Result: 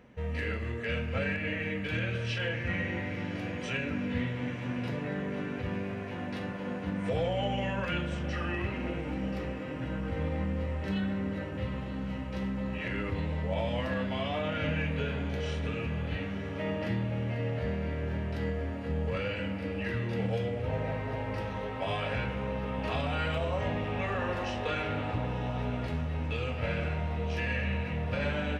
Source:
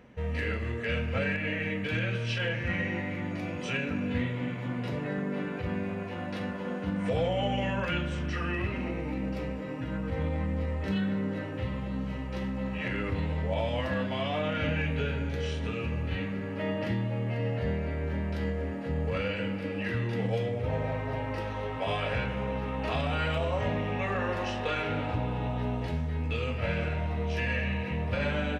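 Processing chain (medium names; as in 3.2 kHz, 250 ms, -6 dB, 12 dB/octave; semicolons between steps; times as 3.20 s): echo that smears into a reverb 994 ms, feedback 68%, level -13 dB; trim -2 dB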